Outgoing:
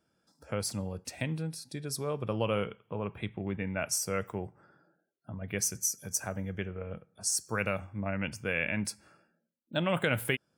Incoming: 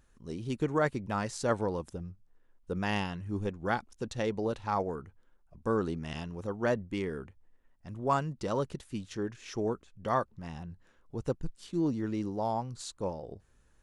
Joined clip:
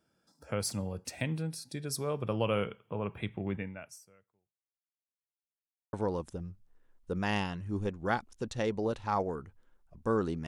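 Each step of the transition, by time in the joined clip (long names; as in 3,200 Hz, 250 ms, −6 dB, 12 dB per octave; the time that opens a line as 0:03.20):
outgoing
0:03.56–0:05.45: fade out exponential
0:05.45–0:05.93: silence
0:05.93: continue with incoming from 0:01.53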